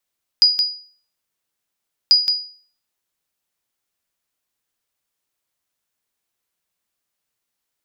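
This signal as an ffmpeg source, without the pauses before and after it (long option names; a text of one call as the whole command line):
ffmpeg -f lavfi -i "aevalsrc='0.562*(sin(2*PI*4910*mod(t,1.69))*exp(-6.91*mod(t,1.69)/0.45)+0.501*sin(2*PI*4910*max(mod(t,1.69)-0.17,0))*exp(-6.91*max(mod(t,1.69)-0.17,0)/0.45))':duration=3.38:sample_rate=44100" out.wav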